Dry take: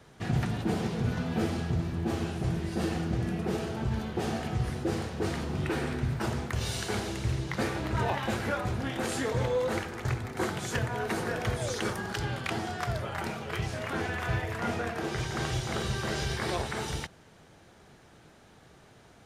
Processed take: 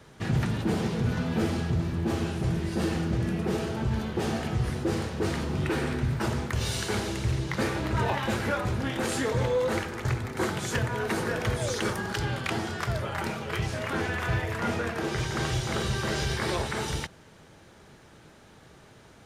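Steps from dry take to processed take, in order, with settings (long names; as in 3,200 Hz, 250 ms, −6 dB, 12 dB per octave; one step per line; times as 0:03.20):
notch filter 720 Hz, Q 12
in parallel at −7 dB: gain into a clipping stage and back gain 27 dB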